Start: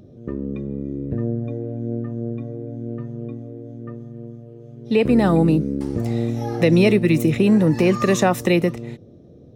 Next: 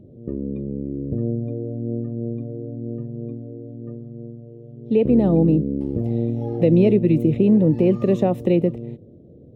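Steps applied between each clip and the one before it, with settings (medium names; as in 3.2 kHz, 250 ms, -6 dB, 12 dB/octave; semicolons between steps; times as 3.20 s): FFT filter 540 Hz 0 dB, 1.5 kHz -21 dB, 3 kHz -11 dB, 5.8 kHz -25 dB, 13 kHz -20 dB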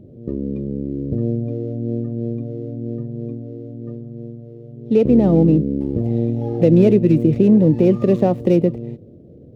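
median filter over 15 samples; trim +3 dB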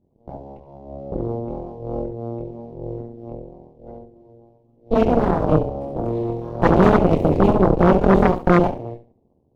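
chorus voices 6, 0.47 Hz, delay 24 ms, depth 2.9 ms; flutter echo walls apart 11.7 m, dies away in 0.58 s; Chebyshev shaper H 3 -24 dB, 6 -8 dB, 7 -20 dB, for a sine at -2.5 dBFS; trim -1.5 dB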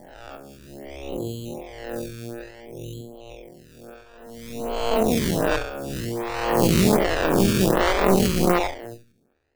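reverse spectral sustain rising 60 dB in 1.74 s; decimation with a swept rate 17×, swing 60% 0.57 Hz; lamp-driven phase shifter 1.3 Hz; trim -4.5 dB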